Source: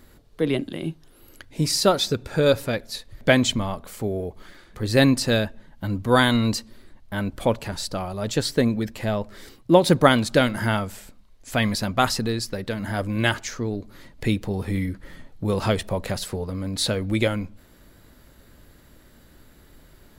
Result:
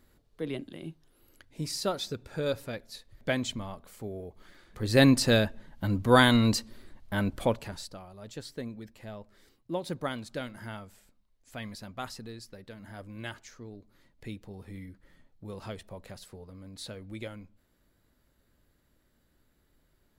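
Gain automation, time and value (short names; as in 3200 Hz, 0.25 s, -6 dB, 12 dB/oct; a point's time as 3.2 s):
4.27 s -12 dB
5.1 s -2 dB
7.29 s -2 dB
7.81 s -11 dB
8.01 s -18 dB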